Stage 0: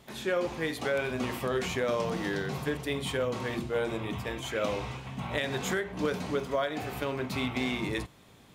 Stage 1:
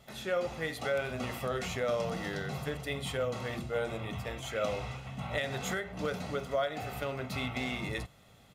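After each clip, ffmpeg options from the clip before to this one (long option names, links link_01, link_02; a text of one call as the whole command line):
ffmpeg -i in.wav -af "aecho=1:1:1.5:0.49,volume=-3.5dB" out.wav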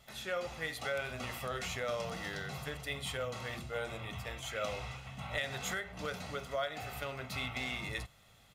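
ffmpeg -i in.wav -af "equalizer=frequency=280:width_type=o:width=2.9:gain=-8.5" out.wav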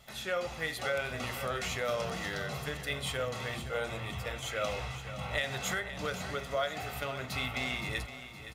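ffmpeg -i in.wav -af "aecho=1:1:517|1034|1551|2068:0.251|0.111|0.0486|0.0214,volume=3.5dB" out.wav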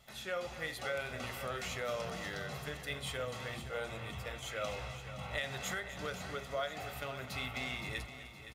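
ffmpeg -i in.wav -af "aecho=1:1:253:0.188,volume=-5dB" out.wav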